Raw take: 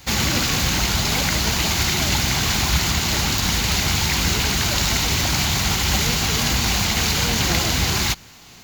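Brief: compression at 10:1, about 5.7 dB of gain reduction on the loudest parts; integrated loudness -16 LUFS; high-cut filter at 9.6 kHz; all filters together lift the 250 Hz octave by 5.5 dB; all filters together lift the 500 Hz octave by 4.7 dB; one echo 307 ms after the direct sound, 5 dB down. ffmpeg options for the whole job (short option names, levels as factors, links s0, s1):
-af "lowpass=9600,equalizer=f=250:t=o:g=6.5,equalizer=f=500:t=o:g=4,acompressor=threshold=0.1:ratio=10,aecho=1:1:307:0.562,volume=2"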